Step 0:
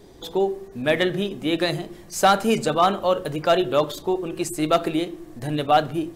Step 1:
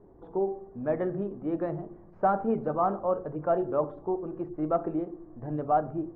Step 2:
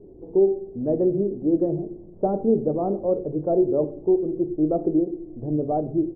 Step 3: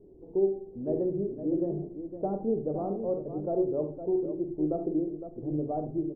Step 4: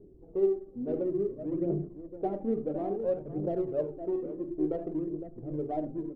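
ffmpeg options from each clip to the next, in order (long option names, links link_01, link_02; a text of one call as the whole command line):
ffmpeg -i in.wav -af "lowpass=frequency=1200:width=0.5412,lowpass=frequency=1200:width=1.3066,bandreject=frequency=71.09:width_type=h:width=4,bandreject=frequency=142.18:width_type=h:width=4,bandreject=frequency=213.27:width_type=h:width=4,bandreject=frequency=284.36:width_type=h:width=4,bandreject=frequency=355.45:width_type=h:width=4,bandreject=frequency=426.54:width_type=h:width=4,bandreject=frequency=497.63:width_type=h:width=4,bandreject=frequency=568.72:width_type=h:width=4,bandreject=frequency=639.81:width_type=h:width=4,bandreject=frequency=710.9:width_type=h:width=4,bandreject=frequency=781.99:width_type=h:width=4,bandreject=frequency=853.08:width_type=h:width=4,volume=-6.5dB" out.wav
ffmpeg -i in.wav -af "firequalizer=gain_entry='entry(200,0);entry(370,5);entry(1100,-23);entry(1500,-29)':delay=0.05:min_phase=1,volume=6.5dB" out.wav
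ffmpeg -i in.wav -af "aecho=1:1:46|72|73|510:0.266|0.15|0.266|0.316,volume=-8.5dB" out.wav
ffmpeg -i in.wav -filter_complex "[0:a]asplit=2[link_01][link_02];[link_02]adynamicsmooth=sensitivity=4:basefreq=970,volume=-2dB[link_03];[link_01][link_03]amix=inputs=2:normalize=0,aphaser=in_gain=1:out_gain=1:delay=4.3:decay=0.49:speed=0.58:type=triangular,volume=-7.5dB" out.wav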